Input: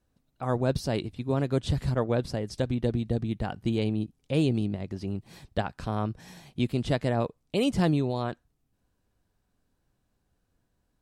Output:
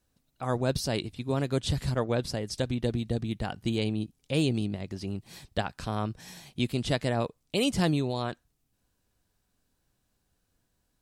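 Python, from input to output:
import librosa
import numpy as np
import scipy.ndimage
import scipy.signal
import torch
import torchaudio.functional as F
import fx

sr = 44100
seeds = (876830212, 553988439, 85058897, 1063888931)

y = fx.high_shelf(x, sr, hz=2300.0, db=9.0)
y = y * librosa.db_to_amplitude(-2.0)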